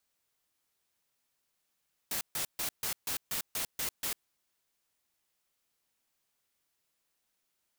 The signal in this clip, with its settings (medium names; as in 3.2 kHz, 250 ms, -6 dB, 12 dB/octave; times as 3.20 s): noise bursts white, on 0.10 s, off 0.14 s, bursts 9, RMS -34 dBFS